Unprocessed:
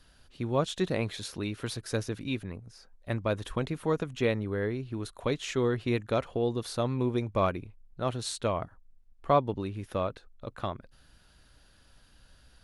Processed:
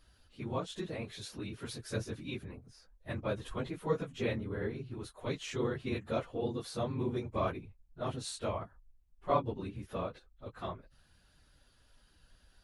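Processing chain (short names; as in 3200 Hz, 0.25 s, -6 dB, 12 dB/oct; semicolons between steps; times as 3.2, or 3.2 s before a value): phase scrambler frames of 50 ms; 0.59–1.69 compressor 2:1, threshold -33 dBFS, peak gain reduction 5.5 dB; gain -6 dB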